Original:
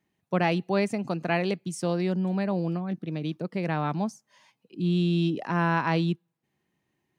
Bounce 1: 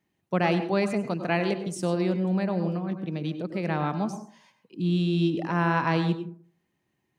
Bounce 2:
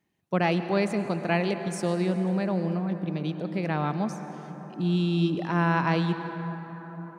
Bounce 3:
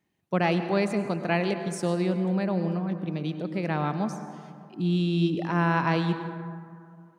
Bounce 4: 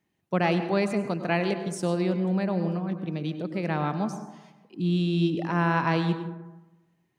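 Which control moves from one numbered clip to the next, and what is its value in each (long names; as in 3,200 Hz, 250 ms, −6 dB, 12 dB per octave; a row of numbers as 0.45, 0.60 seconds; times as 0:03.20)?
dense smooth reverb, RT60: 0.5, 5.3, 2.3, 1.1 seconds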